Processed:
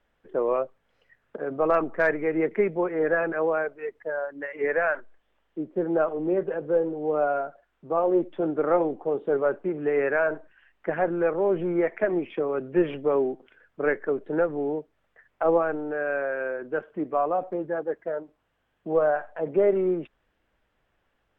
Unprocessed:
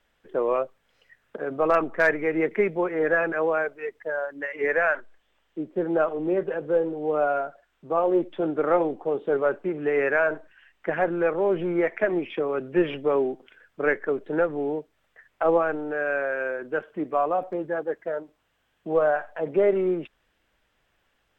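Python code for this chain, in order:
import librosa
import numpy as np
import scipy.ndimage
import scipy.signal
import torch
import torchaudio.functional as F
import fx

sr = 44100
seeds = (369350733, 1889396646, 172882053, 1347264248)

y = fx.high_shelf(x, sr, hz=2500.0, db=-11.5)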